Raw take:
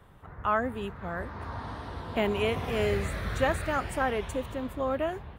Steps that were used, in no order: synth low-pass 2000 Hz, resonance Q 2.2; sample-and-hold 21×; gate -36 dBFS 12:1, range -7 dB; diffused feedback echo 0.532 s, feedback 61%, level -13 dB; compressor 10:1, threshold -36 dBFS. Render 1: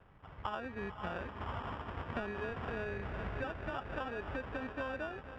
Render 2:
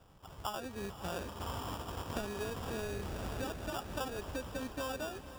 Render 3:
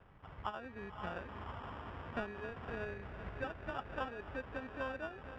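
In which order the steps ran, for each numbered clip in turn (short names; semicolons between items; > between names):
diffused feedback echo > gate > sample-and-hold > synth low-pass > compressor; synth low-pass > gate > compressor > sample-and-hold > diffused feedback echo; diffused feedback echo > compressor > sample-and-hold > synth low-pass > gate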